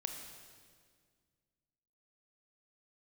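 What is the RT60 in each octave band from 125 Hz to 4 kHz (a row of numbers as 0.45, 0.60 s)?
2.5, 2.4, 2.0, 1.7, 1.7, 1.7 s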